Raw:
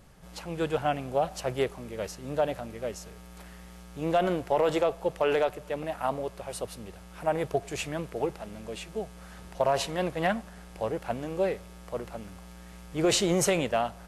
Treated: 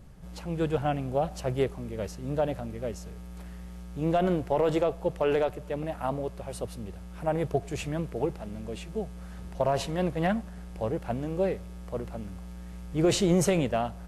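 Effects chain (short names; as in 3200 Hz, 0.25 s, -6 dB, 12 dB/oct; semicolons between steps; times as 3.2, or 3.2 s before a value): low shelf 350 Hz +11.5 dB; gain -4 dB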